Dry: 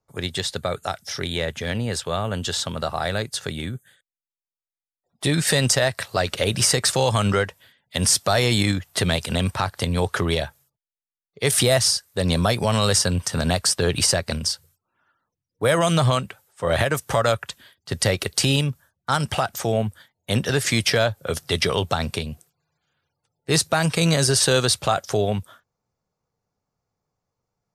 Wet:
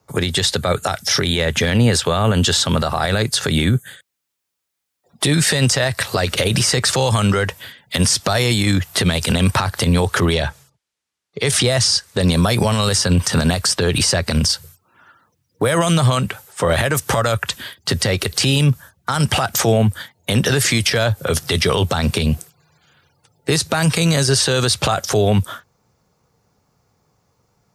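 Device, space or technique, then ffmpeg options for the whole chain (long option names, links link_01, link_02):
mastering chain: -filter_complex "[0:a]asettb=1/sr,asplit=3[link_01][link_02][link_03];[link_01]atrim=end=10.334[link_04];[link_02]atrim=start=10.33:end=12.21,asetpts=PTS-STARTPTS,afade=type=in:duration=0.004:curve=qsin,afade=type=out:start_time=1.876:duration=0.004:curve=qsin,lowpass=8000[link_05];[link_03]atrim=start=12.206[link_06];[link_04][link_05]acrossfade=duration=0.004:curve1=hsin:curve2=qsin[link_07];[link_07][link_06]acrossfade=duration=0.004:curve1=qsin:curve2=hsin,highpass=42,equalizer=frequency=640:width_type=o:width=0.69:gain=-2.5,acrossover=split=96|7100[link_08][link_09][link_10];[link_08]acompressor=threshold=-34dB:ratio=4[link_11];[link_09]acompressor=threshold=-22dB:ratio=4[link_12];[link_10]acompressor=threshold=-34dB:ratio=4[link_13];[link_11][link_12][link_13]amix=inputs=3:normalize=0,acompressor=threshold=-30dB:ratio=2,asoftclip=type=hard:threshold=-16dB,alimiter=level_in=24dB:limit=-1dB:release=50:level=0:latency=1,volume=-6dB"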